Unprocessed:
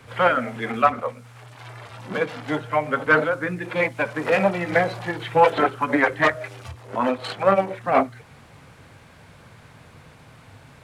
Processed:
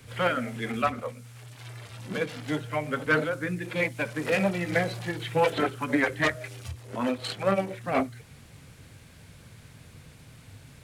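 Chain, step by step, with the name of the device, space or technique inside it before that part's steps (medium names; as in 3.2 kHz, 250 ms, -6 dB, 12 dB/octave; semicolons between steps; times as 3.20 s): smiley-face EQ (bass shelf 87 Hz +5.5 dB; peaking EQ 940 Hz -9 dB 1.8 oct; treble shelf 5.8 kHz +8 dB); trim -2 dB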